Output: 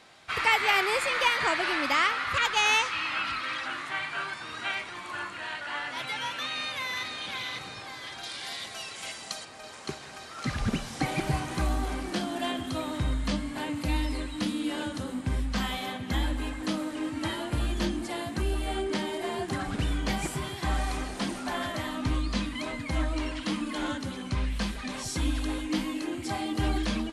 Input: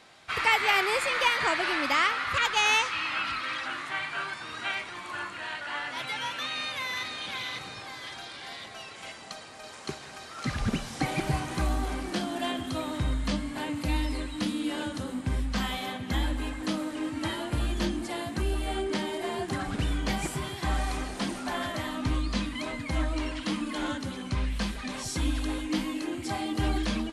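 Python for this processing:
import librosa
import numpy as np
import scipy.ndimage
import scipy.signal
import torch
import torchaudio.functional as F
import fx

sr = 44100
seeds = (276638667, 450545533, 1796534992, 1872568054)

y = fx.high_shelf(x, sr, hz=3700.0, db=11.0, at=(8.23, 9.45))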